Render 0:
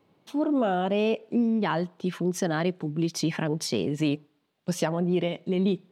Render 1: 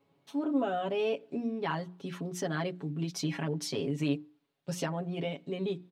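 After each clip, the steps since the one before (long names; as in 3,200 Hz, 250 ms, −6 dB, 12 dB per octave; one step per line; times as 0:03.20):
mains-hum notches 60/120/180/240/300/360 Hz
comb filter 7.2 ms, depth 85%
level −8 dB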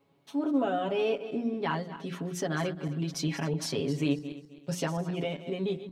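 feedback delay that plays each chunk backwards 131 ms, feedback 51%, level −12 dB
level +2 dB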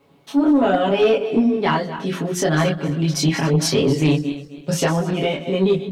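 multi-voice chorus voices 4, 0.99 Hz, delay 23 ms, depth 3 ms
sine wavefolder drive 7 dB, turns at −15 dBFS
level +5.5 dB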